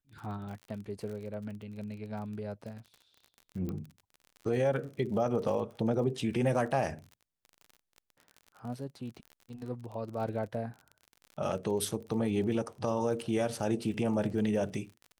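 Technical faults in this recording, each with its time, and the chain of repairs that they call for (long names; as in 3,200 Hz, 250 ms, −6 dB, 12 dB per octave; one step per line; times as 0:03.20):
surface crackle 41 per second −41 dBFS
0:03.69: click −25 dBFS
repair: click removal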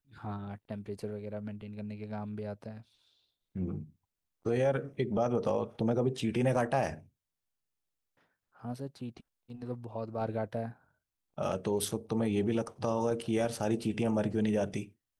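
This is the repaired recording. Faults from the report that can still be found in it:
none of them is left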